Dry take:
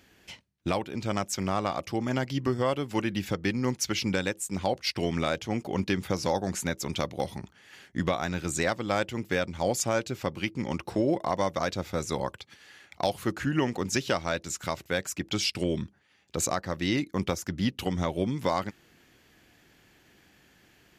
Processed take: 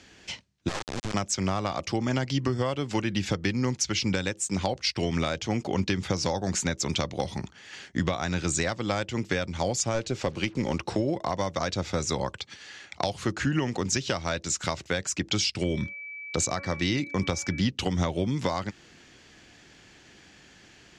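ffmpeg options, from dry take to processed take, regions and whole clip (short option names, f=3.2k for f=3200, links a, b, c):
-filter_complex "[0:a]asettb=1/sr,asplit=3[a][b][c];[a]atrim=end=0.684[d];[b]atrim=start=0.68:end=1.14,asetpts=PTS-STARTPTS,afade=t=in:d=0.004:c=qsin,afade=t=out:st=0.456:d=0.004:c=qsin,highshelf=f=1.7k:t=q:w=1.5:g=-8.5,acompressor=threshold=-30dB:ratio=5:attack=3.2:release=140:knee=1:detection=peak,acrusher=bits=3:dc=4:mix=0:aa=0.000001[e];[c]atrim=start=1.136[f];[d][e]acrossfade=d=0.004:c1=hsin:c2=qsin[g];[g][f]acrossfade=d=0.004:c1=qsin:c2=hsin,asettb=1/sr,asplit=3[h][i][j];[h]atrim=end=9.944[k];[i]atrim=start=9.94:end=10.79,asetpts=PTS-STARTPTS,afade=t=in:d=0.004:c=qsin,afade=t=out:st=0.846:d=0.004:c=qsin,equalizer=f=500:w=1.1:g=5,aeval=exprs='(tanh(7.08*val(0)+0.3)-tanh(0.3))/7.08':c=same,acrusher=bits=8:mix=0:aa=0.5[l];[j]atrim=start=10.786[m];[k][l]acrossfade=d=0.004:c1=hsin:c2=qsin[n];[n][m]acrossfade=d=0.004:c1=qsin:c2=hsin,asettb=1/sr,asplit=3[o][p][q];[o]atrim=end=15.614[r];[p]atrim=start=15.61:end=17.61,asetpts=PTS-STARTPTS,afade=t=in:d=0.004:c=qsin,afade=t=out:st=1.996:d=0.004:c=qsin,agate=range=-33dB:threshold=-56dB:ratio=16:release=100:detection=peak,aeval=exprs='val(0)+0.00631*sin(2*PI*2300*n/s)':c=same,bandreject=f=279.9:t=h:w=4,bandreject=f=559.8:t=h:w=4,bandreject=f=839.7:t=h:w=4,bandreject=f=1.1196k:t=h:w=4,bandreject=f=1.3995k:t=h:w=4,bandreject=f=1.6794k:t=h:w=4,bandreject=f=1.9593k:t=h:w=4,bandreject=f=2.2392k:t=h:w=4,bandreject=f=2.5191k:t=h:w=4[s];[q]atrim=start=17.606[t];[r][s]acrossfade=d=0.004:c1=hsin:c2=qsin[u];[u][t]acrossfade=d=0.004:c1=qsin:c2=hsin,lowpass=f=7.1k:w=0.5412,lowpass=f=7.1k:w=1.3066,highshelf=f=4.8k:g=9,acrossover=split=130[v][w];[w]acompressor=threshold=-30dB:ratio=6[x];[v][x]amix=inputs=2:normalize=0,volume=5.5dB"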